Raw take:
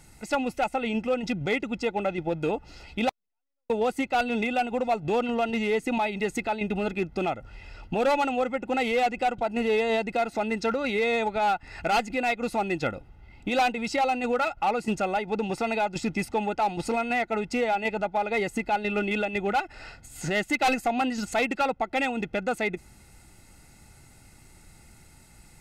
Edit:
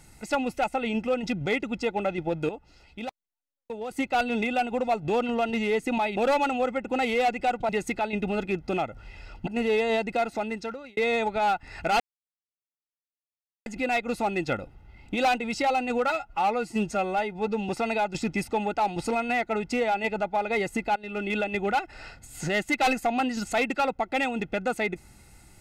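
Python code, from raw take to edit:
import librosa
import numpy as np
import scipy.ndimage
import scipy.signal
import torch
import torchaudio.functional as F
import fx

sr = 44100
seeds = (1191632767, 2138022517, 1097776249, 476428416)

y = fx.edit(x, sr, fx.clip_gain(start_s=2.49, length_s=1.42, db=-9.5),
    fx.move(start_s=7.95, length_s=1.52, to_s=6.17),
    fx.fade_out_span(start_s=10.26, length_s=0.71),
    fx.insert_silence(at_s=12.0, length_s=1.66),
    fx.stretch_span(start_s=14.44, length_s=1.06, factor=1.5),
    fx.fade_in_from(start_s=18.77, length_s=0.41, floor_db=-18.5), tone=tone)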